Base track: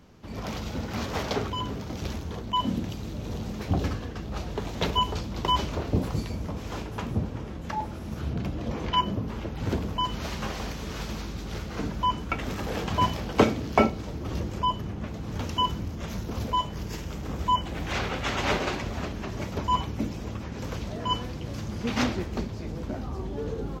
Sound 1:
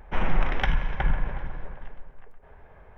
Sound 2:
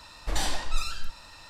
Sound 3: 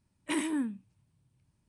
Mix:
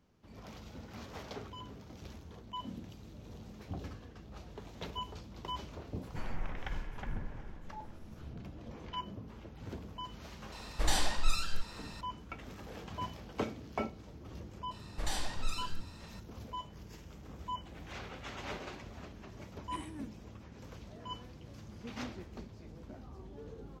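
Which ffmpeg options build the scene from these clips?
ffmpeg -i bed.wav -i cue0.wav -i cue1.wav -i cue2.wav -filter_complex "[2:a]asplit=2[link_01][link_02];[0:a]volume=-16dB[link_03];[1:a]atrim=end=2.97,asetpts=PTS-STARTPTS,volume=-16dB,afade=type=in:duration=0.004:curve=hsin,afade=type=out:start_time=2.966:duration=0.004:curve=hsin,adelay=6030[link_04];[link_01]atrim=end=1.49,asetpts=PTS-STARTPTS,volume=-2dB,afade=type=in:duration=0.004:curve=hsin,afade=type=out:start_time=1.486:duration=0.004:curve=hsin,adelay=10520[link_05];[link_02]atrim=end=1.49,asetpts=PTS-STARTPTS,volume=-8dB,afade=type=in:duration=0.004:curve=hsin,afade=type=out:start_time=1.486:duration=0.004:curve=hsin,adelay=14710[link_06];[3:a]atrim=end=1.68,asetpts=PTS-STARTPTS,volume=-16dB,afade=type=in:duration=0.004:curve=hsin,afade=type=out:start_time=1.676:duration=0.004:curve=hsin,adelay=19420[link_07];[link_03][link_04][link_05][link_06][link_07]amix=inputs=5:normalize=0" out.wav

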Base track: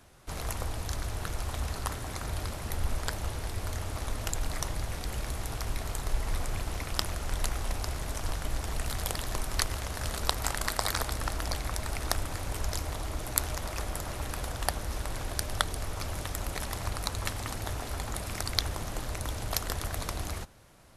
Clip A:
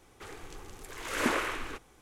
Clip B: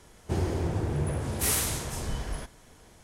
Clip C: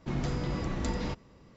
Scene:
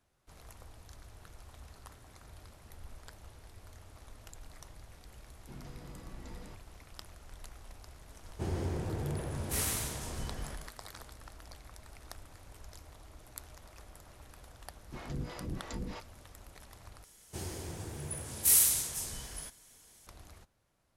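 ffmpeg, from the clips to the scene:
ffmpeg -i bed.wav -i cue0.wav -i cue1.wav -i cue2.wav -filter_complex "[3:a]asplit=2[link_01][link_02];[2:a]asplit=2[link_03][link_04];[0:a]volume=-18.5dB[link_05];[link_03]aecho=1:1:141:0.531[link_06];[link_02]acrossover=split=450[link_07][link_08];[link_07]aeval=exprs='val(0)*(1-1/2+1/2*cos(2*PI*3.1*n/s))':channel_layout=same[link_09];[link_08]aeval=exprs='val(0)*(1-1/2-1/2*cos(2*PI*3.1*n/s))':channel_layout=same[link_10];[link_09][link_10]amix=inputs=2:normalize=0[link_11];[link_04]crystalizer=i=6:c=0[link_12];[link_05]asplit=2[link_13][link_14];[link_13]atrim=end=17.044[link_15];[link_12]atrim=end=3.03,asetpts=PTS-STARTPTS,volume=-14dB[link_16];[link_14]atrim=start=20.066[link_17];[link_01]atrim=end=1.56,asetpts=PTS-STARTPTS,volume=-17.5dB,afade=type=in:duration=0.004:curve=hsin,afade=type=out:start_time=1.556:duration=0.004:curve=hsin,adelay=238581S[link_18];[link_06]atrim=end=3.03,asetpts=PTS-STARTPTS,volume=-7.5dB,afade=type=in:duration=0.004:curve=hsin,afade=type=out:start_time=3.026:duration=0.004:curve=hsin,adelay=357210S[link_19];[link_11]atrim=end=1.56,asetpts=PTS-STARTPTS,volume=-3.5dB,afade=type=in:duration=0.004:curve=hsin,afade=type=out:start_time=1.556:duration=0.004:curve=hsin,adelay=14860[link_20];[link_15][link_16]acrossfade=duration=0.004:curve1=hsin:curve2=hsin[link_21];[link_21][link_17]acrossfade=duration=0.004:curve1=hsin:curve2=hsin[link_22];[link_22][link_18][link_19][link_20]amix=inputs=4:normalize=0" out.wav

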